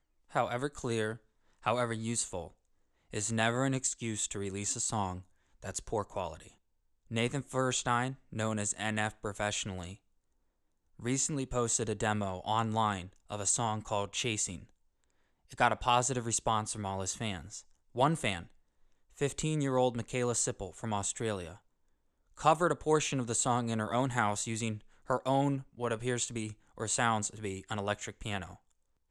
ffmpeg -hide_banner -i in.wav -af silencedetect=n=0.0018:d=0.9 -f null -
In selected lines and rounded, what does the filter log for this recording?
silence_start: 9.97
silence_end: 10.99 | silence_duration: 1.03